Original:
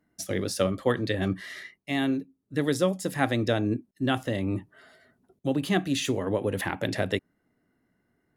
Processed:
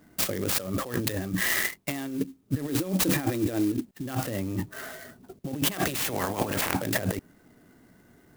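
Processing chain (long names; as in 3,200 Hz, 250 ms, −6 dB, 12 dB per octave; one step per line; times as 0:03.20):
0:05.70–0:06.73: ceiling on every frequency bin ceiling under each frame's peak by 19 dB
compressor whose output falls as the input rises −37 dBFS, ratio −1
0:02.69–0:03.72: hollow resonant body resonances 320/2,400/3,900 Hz, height 12 dB, ringing for 45 ms
converter with an unsteady clock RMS 0.058 ms
level +7 dB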